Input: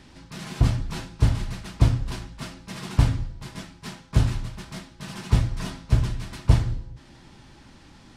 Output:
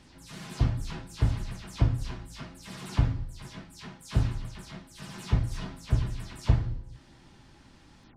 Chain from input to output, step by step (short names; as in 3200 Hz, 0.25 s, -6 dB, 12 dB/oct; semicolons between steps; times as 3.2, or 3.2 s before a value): spectral delay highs early, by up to 0.132 s; gain -5.5 dB